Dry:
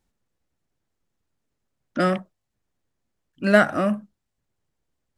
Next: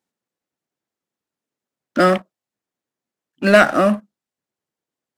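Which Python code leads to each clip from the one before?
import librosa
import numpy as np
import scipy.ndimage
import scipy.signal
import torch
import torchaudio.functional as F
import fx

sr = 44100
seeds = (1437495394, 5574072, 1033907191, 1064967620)

y = scipy.signal.sosfilt(scipy.signal.butter(2, 220.0, 'highpass', fs=sr, output='sos'), x)
y = fx.leveller(y, sr, passes=2)
y = y * 10.0 ** (1.0 / 20.0)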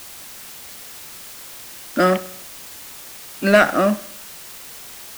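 y = fx.quant_dither(x, sr, seeds[0], bits=6, dither='triangular')
y = fx.echo_feedback(y, sr, ms=65, feedback_pct=54, wet_db=-18.5)
y = y * 10.0 ** (-2.0 / 20.0)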